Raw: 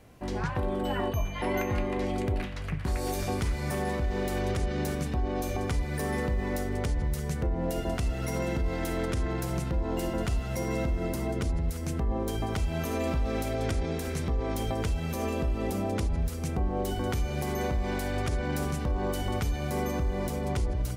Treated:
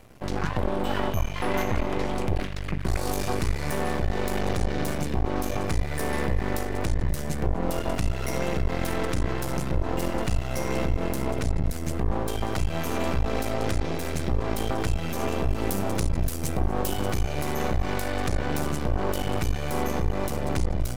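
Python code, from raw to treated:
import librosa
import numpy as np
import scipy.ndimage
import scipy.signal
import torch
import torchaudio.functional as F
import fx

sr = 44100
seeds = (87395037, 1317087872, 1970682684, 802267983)

y = fx.high_shelf(x, sr, hz=6500.0, db=9.0, at=(15.49, 17.07))
y = np.maximum(y, 0.0)
y = y + 10.0 ** (-23.5 / 20.0) * np.pad(y, (int(245 * sr / 1000.0), 0))[:len(y)]
y = y * 10.0 ** (7.0 / 20.0)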